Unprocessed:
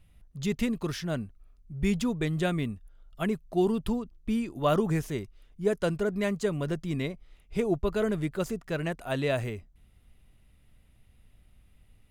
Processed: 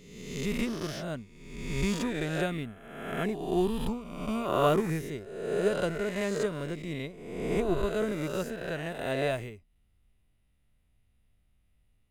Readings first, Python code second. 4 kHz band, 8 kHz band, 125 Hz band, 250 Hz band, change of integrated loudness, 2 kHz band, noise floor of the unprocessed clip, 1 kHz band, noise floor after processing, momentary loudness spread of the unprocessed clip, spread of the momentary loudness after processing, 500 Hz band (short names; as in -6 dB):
+0.5 dB, +1.0 dB, -3.5 dB, -3.0 dB, -1.5 dB, +0.5 dB, -60 dBFS, +1.5 dB, -69 dBFS, 9 LU, 10 LU, 0.0 dB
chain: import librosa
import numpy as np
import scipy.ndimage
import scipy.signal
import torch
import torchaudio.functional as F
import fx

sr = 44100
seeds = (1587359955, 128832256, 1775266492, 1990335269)

y = fx.spec_swells(x, sr, rise_s=1.68)
y = fx.upward_expand(y, sr, threshold_db=-42.0, expansion=1.5)
y = y * librosa.db_to_amplitude(-2.0)